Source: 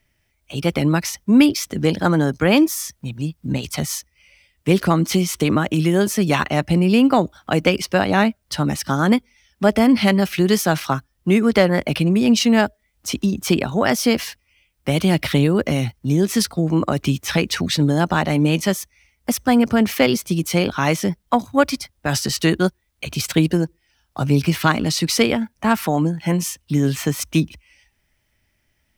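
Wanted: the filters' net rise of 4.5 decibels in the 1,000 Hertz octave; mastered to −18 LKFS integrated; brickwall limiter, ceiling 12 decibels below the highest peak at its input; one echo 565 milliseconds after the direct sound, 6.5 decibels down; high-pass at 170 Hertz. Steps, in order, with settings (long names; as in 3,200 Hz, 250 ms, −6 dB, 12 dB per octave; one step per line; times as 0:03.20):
high-pass filter 170 Hz
parametric band 1,000 Hz +6 dB
brickwall limiter −10.5 dBFS
single-tap delay 565 ms −6.5 dB
level +3.5 dB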